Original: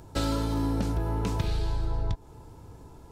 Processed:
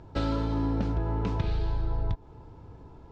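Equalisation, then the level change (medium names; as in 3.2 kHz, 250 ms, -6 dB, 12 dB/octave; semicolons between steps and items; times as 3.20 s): distance through air 200 m; 0.0 dB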